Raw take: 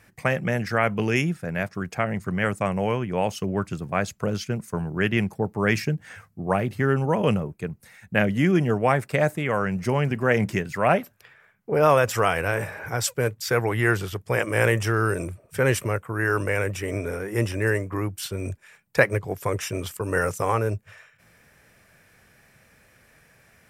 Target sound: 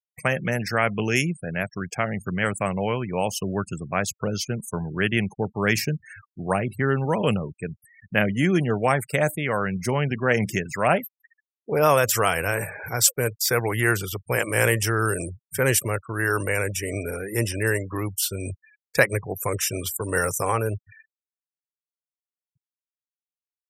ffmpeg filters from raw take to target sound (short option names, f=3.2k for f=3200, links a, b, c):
-af "crystalizer=i=2.5:c=0,afftfilt=real='re*gte(hypot(re,im),0.02)':imag='im*gte(hypot(re,im),0.02)':win_size=1024:overlap=0.75,volume=-1dB"